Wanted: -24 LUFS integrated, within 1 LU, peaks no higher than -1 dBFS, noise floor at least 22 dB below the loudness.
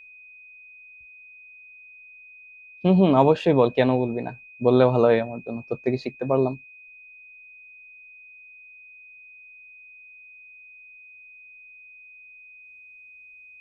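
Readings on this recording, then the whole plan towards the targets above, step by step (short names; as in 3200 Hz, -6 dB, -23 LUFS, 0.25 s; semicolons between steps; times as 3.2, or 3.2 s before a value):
steady tone 2500 Hz; tone level -45 dBFS; loudness -21.5 LUFS; peak -3.5 dBFS; loudness target -24.0 LUFS
-> notch 2500 Hz, Q 30; gain -2.5 dB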